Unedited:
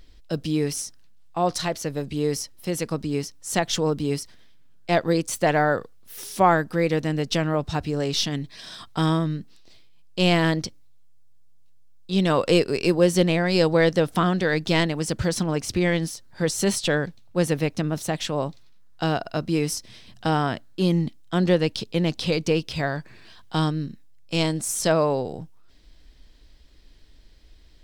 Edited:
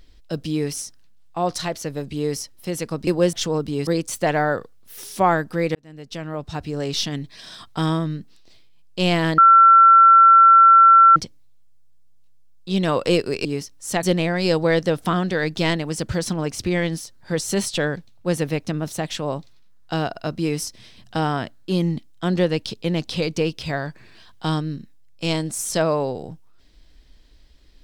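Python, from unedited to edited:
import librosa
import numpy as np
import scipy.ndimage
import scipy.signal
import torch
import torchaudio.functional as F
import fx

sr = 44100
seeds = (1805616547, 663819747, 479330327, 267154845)

y = fx.edit(x, sr, fx.swap(start_s=3.07, length_s=0.58, other_s=12.87, other_length_s=0.26),
    fx.cut(start_s=4.19, length_s=0.88),
    fx.fade_in_span(start_s=6.95, length_s=1.16),
    fx.insert_tone(at_s=10.58, length_s=1.78, hz=1350.0, db=-7.0), tone=tone)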